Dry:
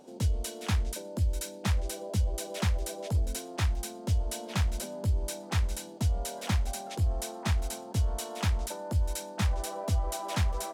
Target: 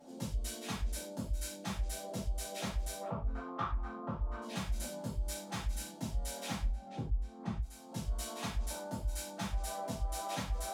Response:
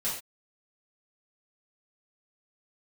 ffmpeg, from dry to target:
-filter_complex "[0:a]asettb=1/sr,asplit=3[s0][s1][s2];[s0]atrim=end=6.644[s3];[s1]atrim=start=6.64:end=7.58,asetpts=PTS-STARTPTS,afade=t=in:d=0.004:c=qsin,afade=t=out:st=0.936:d=0.004:c=qsin,aemphasis=mode=reproduction:type=riaa[s4];[s2]atrim=start=7.576[s5];[s3][s4]acrossfade=d=0.004:c1=hsin:c2=qsin[s6];[s6][s5]acrossfade=d=0.004:c1=qsin:c2=hsin,acompressor=threshold=0.0251:ratio=10,asettb=1/sr,asplit=3[s7][s8][s9];[s7]atrim=end=3.014[s10];[s8]atrim=start=3.01:end=4.42,asetpts=PTS-STARTPTS,afade=t=in:d=0.004:c=qsin,afade=t=out:st=1.406:d=0.004:c=qsin,lowpass=f=1200:t=q:w=7.8[s11];[s9]atrim=start=4.416[s12];[s10][s11]acrossfade=d=0.004:c1=hsin:c2=qsin[s13];[s13][s12]acrossfade=d=0.004:c1=qsin:c2=hsin,asoftclip=type=tanh:threshold=0.0668[s14];[1:a]atrim=start_sample=2205,asetrate=52920,aresample=44100[s15];[s14][s15]afir=irnorm=-1:irlink=0,volume=0.562"

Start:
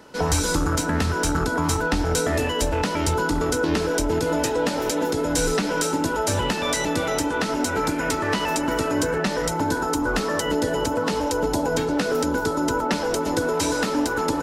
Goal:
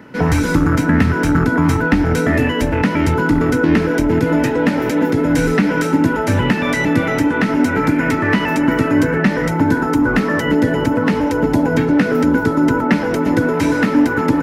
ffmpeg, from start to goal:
-af "equalizer=f=125:t=o:w=1:g=11,equalizer=f=250:t=o:w=1:g=10,equalizer=f=2000:t=o:w=1:g=11,equalizer=f=4000:t=o:w=1:g=-5,equalizer=f=8000:t=o:w=1:g=-9,volume=1.12"

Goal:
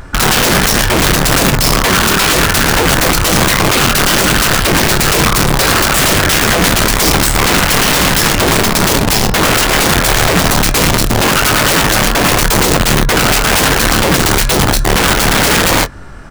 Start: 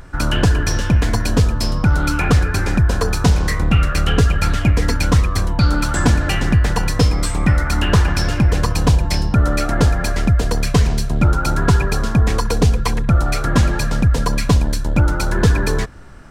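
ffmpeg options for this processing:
-filter_complex "[0:a]equalizer=f=1200:w=0.48:g=2,aeval=exprs='(mod(4.73*val(0)+1,2)-1)/4.73':c=same,asplit=2[s0][s1];[s1]adelay=22,volume=0.266[s2];[s0][s2]amix=inputs=2:normalize=0,volume=2.37"

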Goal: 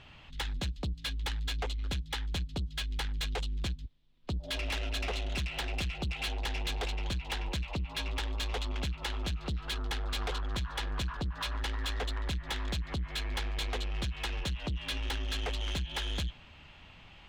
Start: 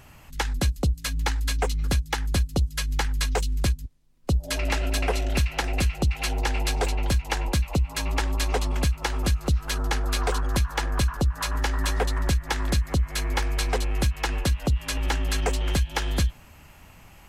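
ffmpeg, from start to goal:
-af "lowpass=f=3500:t=q:w=3.5,asoftclip=type=tanh:threshold=0.0596,volume=0.531"

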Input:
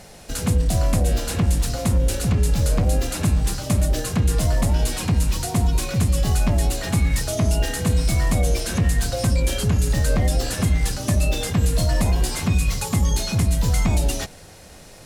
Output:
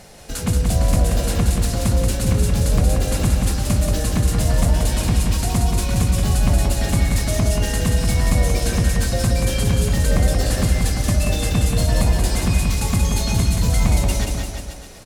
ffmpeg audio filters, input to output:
-af "aecho=1:1:180|342|487.8|619|737.1:0.631|0.398|0.251|0.158|0.1"

